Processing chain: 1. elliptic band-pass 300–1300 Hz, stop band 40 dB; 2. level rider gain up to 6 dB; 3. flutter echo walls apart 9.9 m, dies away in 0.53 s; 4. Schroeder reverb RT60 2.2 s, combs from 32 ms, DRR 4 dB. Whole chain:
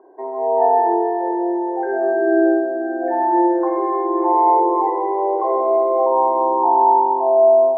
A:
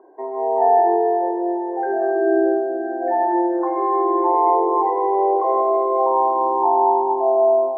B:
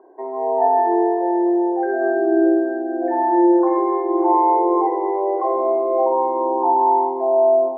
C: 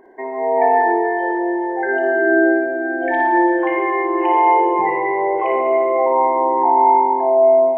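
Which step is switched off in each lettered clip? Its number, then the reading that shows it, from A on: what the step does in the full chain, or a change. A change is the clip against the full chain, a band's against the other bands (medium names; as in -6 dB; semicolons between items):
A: 3, 2 kHz band -2.0 dB; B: 4, echo-to-direct -1.0 dB to -5.5 dB; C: 1, 2 kHz band +12.5 dB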